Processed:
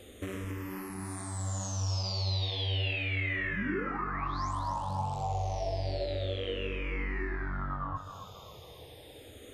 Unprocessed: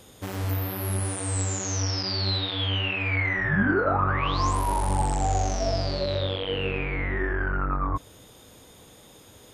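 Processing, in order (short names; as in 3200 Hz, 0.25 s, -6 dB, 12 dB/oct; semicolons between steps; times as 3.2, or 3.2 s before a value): bell 1500 Hz -7 dB 0.21 oct; compressor 5:1, threshold -33 dBFS, peak gain reduction 13 dB; high shelf 6300 Hz -8.5 dB; split-band echo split 340 Hz, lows 0.124 s, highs 0.271 s, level -8 dB; endless phaser -0.32 Hz; gain +3 dB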